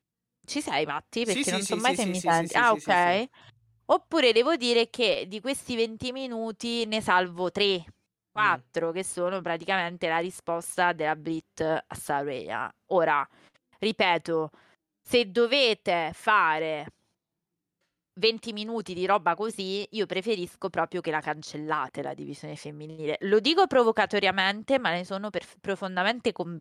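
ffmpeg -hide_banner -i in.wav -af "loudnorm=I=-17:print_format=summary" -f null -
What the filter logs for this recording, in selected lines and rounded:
Input Integrated:    -26.6 LUFS
Input True Peak:      -9.5 dBTP
Input LRA:             3.9 LU
Input Threshold:     -37.0 LUFS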